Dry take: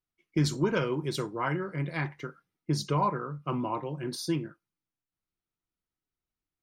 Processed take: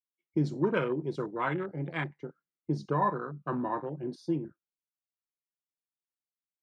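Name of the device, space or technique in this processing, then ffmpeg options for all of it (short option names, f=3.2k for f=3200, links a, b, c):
over-cleaned archive recording: -af "highpass=160,lowpass=6.5k,afwtdn=0.0158"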